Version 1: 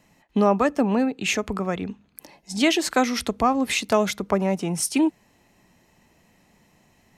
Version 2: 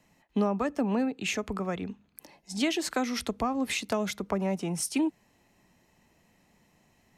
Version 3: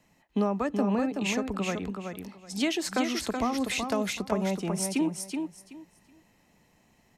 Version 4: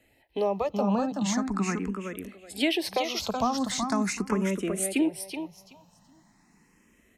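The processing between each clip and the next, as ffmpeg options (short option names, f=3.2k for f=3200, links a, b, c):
-filter_complex "[0:a]acrossover=split=270[a][b];[b]acompressor=threshold=-21dB:ratio=6[c];[a][c]amix=inputs=2:normalize=0,volume=-5.5dB"
-af "aecho=1:1:376|752|1128:0.531|0.106|0.0212"
-filter_complex "[0:a]asplit=2[a][b];[b]afreqshift=0.41[c];[a][c]amix=inputs=2:normalize=1,volume=4.5dB"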